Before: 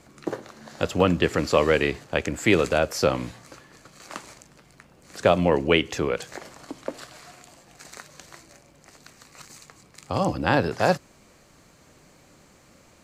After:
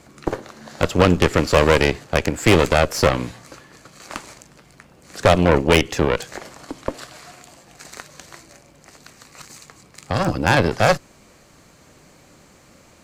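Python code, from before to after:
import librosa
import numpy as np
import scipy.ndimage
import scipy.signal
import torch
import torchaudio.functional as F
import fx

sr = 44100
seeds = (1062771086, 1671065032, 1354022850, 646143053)

y = fx.cheby_harmonics(x, sr, harmonics=(6,), levels_db=(-14,), full_scale_db=-4.5)
y = np.clip(y, -10.0 ** (-8.5 / 20.0), 10.0 ** (-8.5 / 20.0))
y = F.gain(torch.from_numpy(y), 4.5).numpy()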